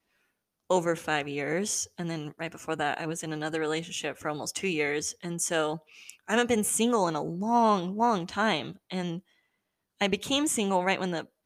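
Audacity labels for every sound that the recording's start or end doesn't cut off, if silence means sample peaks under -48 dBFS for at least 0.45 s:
0.700000	9.190000	sound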